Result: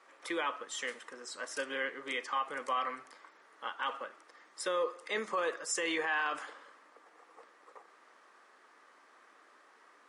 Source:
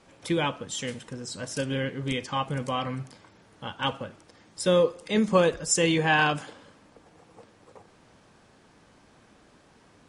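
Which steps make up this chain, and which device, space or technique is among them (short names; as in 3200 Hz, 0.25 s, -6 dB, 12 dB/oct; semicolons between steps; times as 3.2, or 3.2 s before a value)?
laptop speaker (HPF 340 Hz 24 dB/oct; bell 1200 Hz +11.5 dB 0.57 oct; bell 1900 Hz +9 dB 0.41 oct; limiter -16.5 dBFS, peak gain reduction 13 dB); gain -7.5 dB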